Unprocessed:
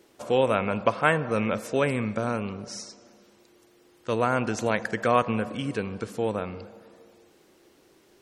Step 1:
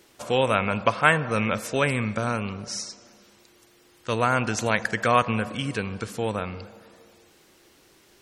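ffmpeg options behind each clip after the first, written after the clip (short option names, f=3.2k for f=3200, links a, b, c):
-af "equalizer=f=380:w=0.47:g=-8,volume=6.5dB"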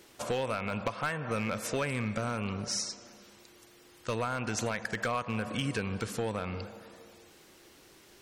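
-af "acompressor=threshold=-27dB:ratio=8,asoftclip=type=hard:threshold=-23.5dB"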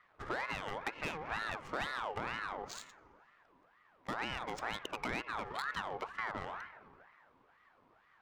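-af "adynamicsmooth=sensitivity=5.5:basefreq=1.1k,aeval=exprs='val(0)*sin(2*PI*1100*n/s+1100*0.45/2.1*sin(2*PI*2.1*n/s))':c=same,volume=-3.5dB"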